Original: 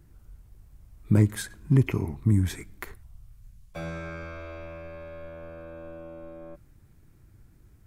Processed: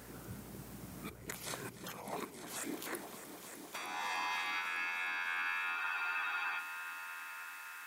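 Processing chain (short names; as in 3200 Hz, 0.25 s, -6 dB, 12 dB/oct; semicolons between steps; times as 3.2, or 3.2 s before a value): spectral gate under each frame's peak -20 dB weak; low shelf 370 Hz +3.5 dB; negative-ratio compressor -56 dBFS, ratio -1; hum 60 Hz, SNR 15 dB; high-pass sweep 84 Hz -> 1700 Hz, 1.14–4.89; multi-head echo 0.302 s, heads all three, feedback 65%, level -15 dB; spectral freeze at 5.79, 0.80 s; gain +10.5 dB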